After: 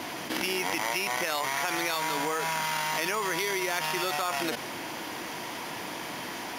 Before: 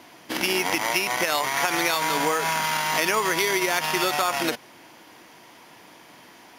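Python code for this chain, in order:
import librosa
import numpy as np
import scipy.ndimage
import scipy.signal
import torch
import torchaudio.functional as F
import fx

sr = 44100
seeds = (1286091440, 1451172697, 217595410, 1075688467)

y = fx.env_flatten(x, sr, amount_pct=70)
y = F.gain(torch.from_numpy(y), -8.0).numpy()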